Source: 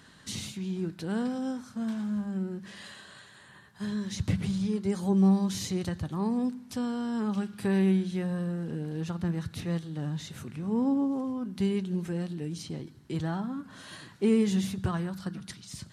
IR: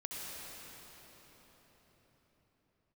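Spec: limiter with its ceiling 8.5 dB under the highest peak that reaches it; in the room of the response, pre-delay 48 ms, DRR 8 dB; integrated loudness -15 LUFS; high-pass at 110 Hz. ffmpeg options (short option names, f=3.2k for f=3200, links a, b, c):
-filter_complex "[0:a]highpass=110,alimiter=limit=-22.5dB:level=0:latency=1,asplit=2[a][b];[1:a]atrim=start_sample=2205,adelay=48[c];[b][c]afir=irnorm=-1:irlink=0,volume=-9dB[d];[a][d]amix=inputs=2:normalize=0,volume=17.5dB"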